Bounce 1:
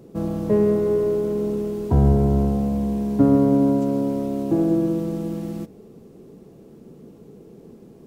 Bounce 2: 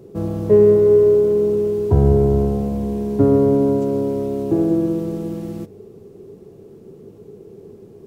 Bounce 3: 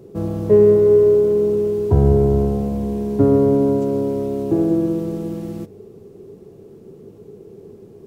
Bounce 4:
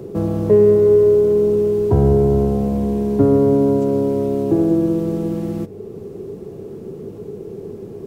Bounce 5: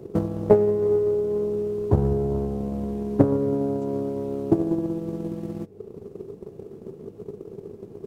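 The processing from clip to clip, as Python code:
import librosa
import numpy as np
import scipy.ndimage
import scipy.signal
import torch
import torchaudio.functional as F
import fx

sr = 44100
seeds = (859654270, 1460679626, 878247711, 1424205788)

y1 = fx.graphic_eq_31(x, sr, hz=(100, 250, 400), db=(12, -4, 10))
y2 = y1
y3 = fx.band_squash(y2, sr, depth_pct=40)
y3 = F.gain(torch.from_numpy(y3), 1.5).numpy()
y4 = fx.transient(y3, sr, attack_db=12, sustain_db=-4)
y4 = fx.doppler_dist(y4, sr, depth_ms=0.61)
y4 = F.gain(torch.from_numpy(y4), -10.0).numpy()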